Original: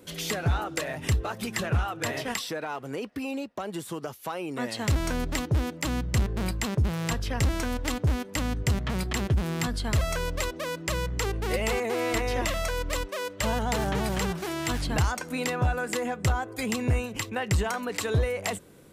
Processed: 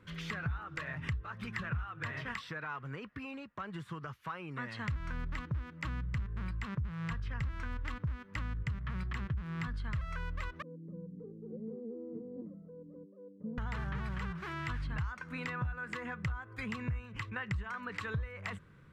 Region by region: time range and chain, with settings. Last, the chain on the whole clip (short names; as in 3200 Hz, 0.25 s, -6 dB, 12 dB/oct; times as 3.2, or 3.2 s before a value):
10.62–13.58 elliptic band-pass 170–450 Hz, stop band 80 dB + comb 4 ms, depth 52%
whole clip: EQ curve 150 Hz 0 dB, 280 Hz -13 dB, 460 Hz -14 dB, 750 Hz -16 dB, 1100 Hz -1 dB, 1700 Hz -1 dB, 11000 Hz -29 dB; compressor 4:1, threshold -35 dBFS